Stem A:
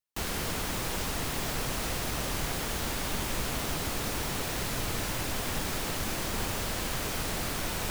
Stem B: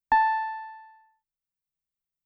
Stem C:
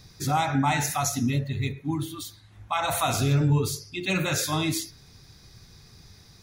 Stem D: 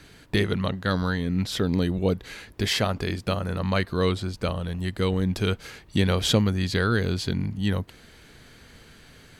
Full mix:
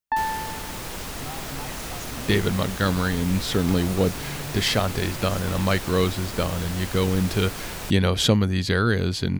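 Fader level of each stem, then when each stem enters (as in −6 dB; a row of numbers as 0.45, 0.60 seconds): −1.0, −3.5, −15.5, +2.0 decibels; 0.00, 0.00, 0.95, 1.95 seconds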